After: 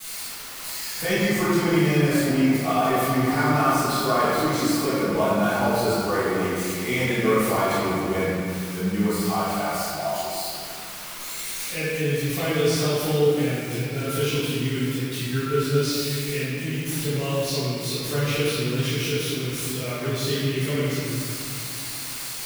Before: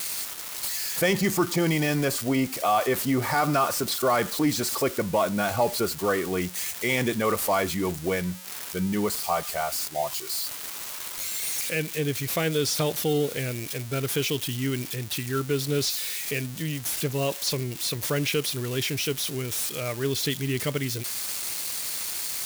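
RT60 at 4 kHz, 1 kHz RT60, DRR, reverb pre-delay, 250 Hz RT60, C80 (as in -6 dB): 1.5 s, 2.5 s, -19.0 dB, 4 ms, 3.4 s, -2.5 dB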